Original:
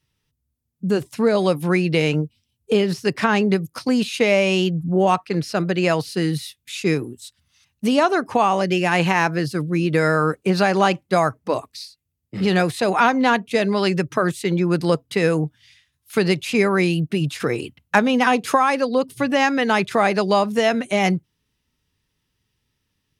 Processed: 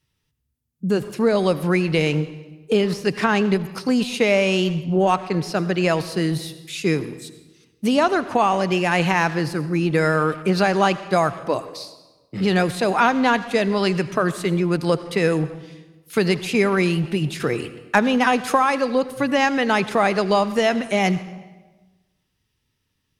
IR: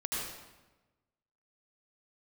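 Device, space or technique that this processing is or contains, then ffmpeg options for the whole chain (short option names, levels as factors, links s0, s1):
saturated reverb return: -filter_complex "[0:a]asplit=2[s0][s1];[1:a]atrim=start_sample=2205[s2];[s1][s2]afir=irnorm=-1:irlink=0,asoftclip=type=tanh:threshold=0.2,volume=0.2[s3];[s0][s3]amix=inputs=2:normalize=0,volume=0.841"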